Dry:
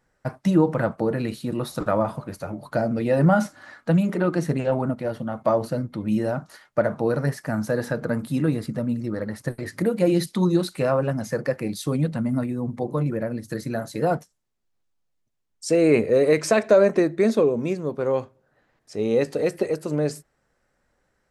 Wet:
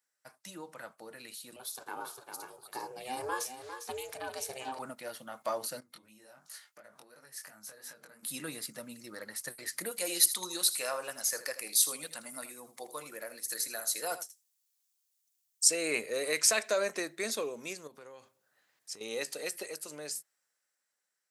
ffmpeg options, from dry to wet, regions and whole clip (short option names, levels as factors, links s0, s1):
-filter_complex "[0:a]asettb=1/sr,asplit=3[s0][s1][s2];[s0]atrim=end=1.564[s3];[s1]atrim=start=1.56:end=4.79,asetpts=PTS-STARTPTS,afade=t=in:d=0.004:c=qsin,afade=t=out:st=3.226:d=0.004:c=qsin,equalizer=f=1700:t=o:w=0.25:g=-14,aecho=1:1:402:0.335,atrim=end_sample=142443,aeval=exprs='val(0)*sin(2*PI*260*n/s)':c=same[s4];[s2]atrim=start=4.786[s5];[s3][s4]acrossfade=d=0.004:c1=hsin:c2=qsin[s6];[s6][s5]acrossfade=d=0.004:c1=qsin:c2=hsin,asettb=1/sr,asplit=3[s7][s8][s9];[s7]atrim=end=5.804[s10];[s8]atrim=start=5.8:end=8.23,asetpts=PTS-STARTPTS,afade=t=in:d=0.004:c=qsin,afade=t=out:st=2.426:d=0.004:c=qsin,acompressor=threshold=0.02:ratio=12:attack=3.2:release=140:knee=1:detection=peak,flanger=delay=18.5:depth=4.7:speed=2.8[s11];[s9]atrim=start=8.226[s12];[s10][s11]acrossfade=d=0.004:c1=hsin:c2=qsin[s13];[s13][s12]acrossfade=d=0.004:c1=qsin:c2=hsin,asettb=1/sr,asplit=3[s14][s15][s16];[s14]atrim=end=9.914[s17];[s15]atrim=start=9.91:end=15.68,asetpts=PTS-STARTPTS,afade=t=in:d=0.004:c=qsin,afade=t=out:st=5.766:d=0.004:c=qsin,bass=f=250:g=-13,treble=f=4000:g=5,aecho=1:1:80:0.211,atrim=end_sample=254457[s18];[s16]atrim=start=15.676[s19];[s17][s18]acrossfade=d=0.004:c1=hsin:c2=qsin[s20];[s20][s19]acrossfade=d=0.004:c1=qsin:c2=hsin,asettb=1/sr,asplit=3[s21][s22][s23];[s21]atrim=end=17.874[s24];[s22]atrim=start=17.87:end=19.01,asetpts=PTS-STARTPTS,afade=t=in:d=0.004:c=qsin,afade=t=out:st=1.136:d=0.004:c=qsin,lowshelf=f=170:g=10,acompressor=threshold=0.0282:ratio=8:attack=3.2:release=140:knee=1:detection=peak[s25];[s23]atrim=start=19.006[s26];[s24][s25]acrossfade=d=0.004:c1=hsin:c2=qsin[s27];[s27][s26]acrossfade=d=0.004:c1=qsin:c2=hsin,highpass=100,aderivative,dynaudnorm=f=430:g=9:m=3.16,volume=0.708"